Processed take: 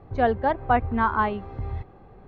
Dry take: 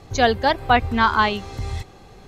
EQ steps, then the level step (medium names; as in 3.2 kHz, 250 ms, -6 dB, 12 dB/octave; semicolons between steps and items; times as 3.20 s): low-pass 1.4 kHz 12 dB/octave; distance through air 94 m; -3.0 dB